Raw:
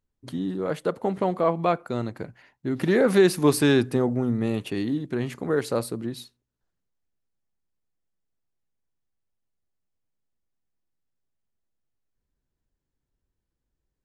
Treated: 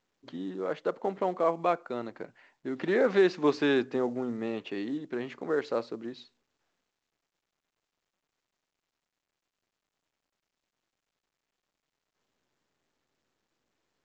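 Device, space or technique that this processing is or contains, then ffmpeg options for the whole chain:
telephone: -af "highpass=300,lowpass=3500,volume=-3.5dB" -ar 16000 -c:a pcm_mulaw

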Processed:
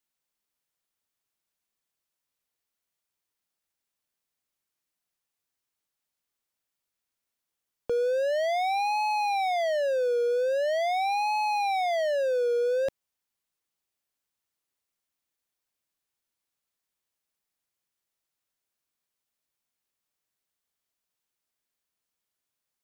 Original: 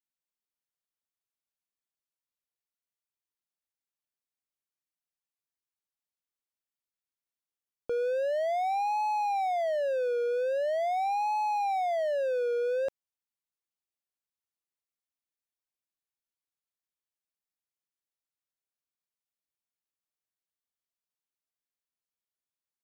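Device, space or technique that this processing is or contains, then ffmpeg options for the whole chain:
one-band saturation: -filter_complex "[0:a]acrossover=split=330|3200[link_01][link_02][link_03];[link_02]asoftclip=type=tanh:threshold=-34dB[link_04];[link_01][link_04][link_03]amix=inputs=3:normalize=0,volume=8dB"

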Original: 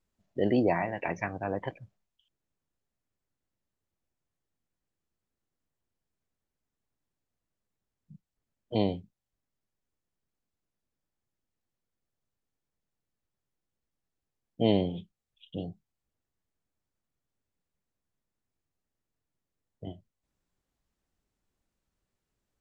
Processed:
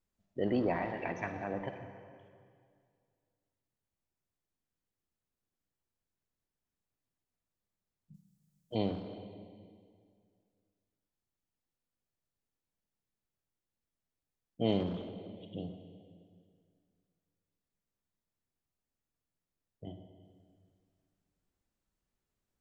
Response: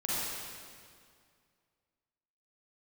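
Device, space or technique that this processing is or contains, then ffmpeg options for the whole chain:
saturated reverb return: -filter_complex "[0:a]asplit=2[link_01][link_02];[1:a]atrim=start_sample=2205[link_03];[link_02][link_03]afir=irnorm=-1:irlink=0,asoftclip=type=tanh:threshold=-19dB,volume=-10.5dB[link_04];[link_01][link_04]amix=inputs=2:normalize=0,asplit=3[link_05][link_06][link_07];[link_05]afade=type=out:start_time=8.13:duration=0.02[link_08];[link_06]bass=frequency=250:gain=-2,treble=frequency=4000:gain=14,afade=type=in:start_time=8.13:duration=0.02,afade=type=out:start_time=8.74:duration=0.02[link_09];[link_07]afade=type=in:start_time=8.74:duration=0.02[link_10];[link_08][link_09][link_10]amix=inputs=3:normalize=0,volume=-7dB"

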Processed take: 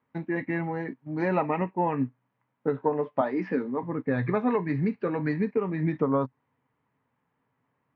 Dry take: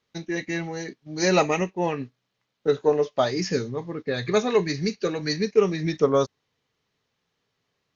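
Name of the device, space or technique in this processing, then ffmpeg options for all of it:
bass amplifier: -filter_complex "[0:a]asettb=1/sr,asplit=3[link_01][link_02][link_03];[link_01]atrim=end=3.214[link_04];[link_02]atrim=start=3.21:end=3.83,asetpts=PTS-STARTPTS,afade=type=in:duration=0.004:curve=qsin,afade=type=out:start_time=0.616:duration=0.004:curve=qsin,highpass=frequency=220:width=0.5412,highpass=frequency=220:width=1.3066[link_05];[link_03]atrim=start=3.826[link_06];[link_04][link_05]acrossfade=duration=0.004:curve1=hsin:curve2=qsin[link_07];[link_07][link_06]acrossfade=duration=0.004:curve1=qsin:curve2=hsin,acompressor=threshold=-23dB:ratio=4,highpass=65,equalizer=frequency=130:width_type=q:width=4:gain=6,equalizer=frequency=260:width_type=q:width=4:gain=9,equalizer=frequency=390:width_type=q:width=4:gain=-4,equalizer=frequency=940:width_type=q:width=4:gain=9,lowpass=frequency=2100:width=0.5412,lowpass=frequency=2100:width=1.3066"

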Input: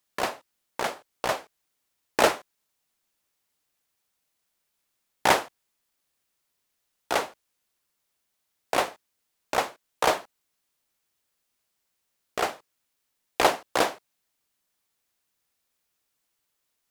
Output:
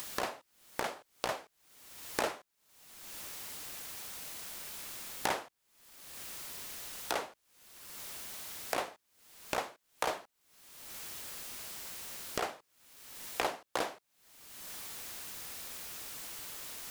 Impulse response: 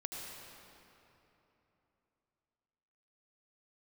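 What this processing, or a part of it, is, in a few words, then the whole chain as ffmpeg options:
upward and downward compression: -af "acompressor=mode=upward:threshold=-31dB:ratio=2.5,acompressor=threshold=-46dB:ratio=3,volume=8dB"

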